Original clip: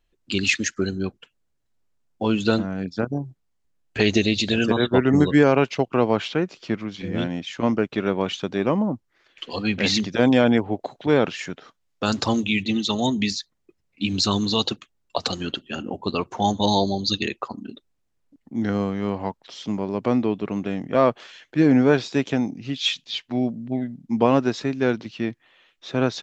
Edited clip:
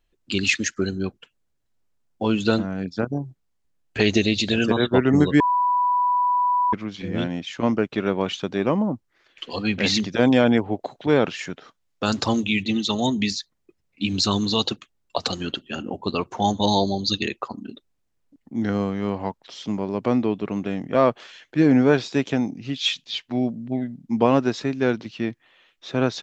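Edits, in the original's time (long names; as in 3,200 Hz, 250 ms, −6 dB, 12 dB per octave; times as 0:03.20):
0:05.40–0:06.73: beep over 987 Hz −17 dBFS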